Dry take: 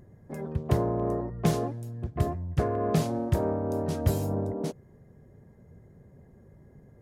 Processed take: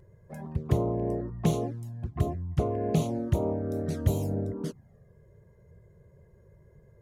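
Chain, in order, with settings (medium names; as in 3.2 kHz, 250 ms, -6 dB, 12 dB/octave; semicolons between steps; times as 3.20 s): touch-sensitive flanger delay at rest 2.1 ms, full sweep at -22.5 dBFS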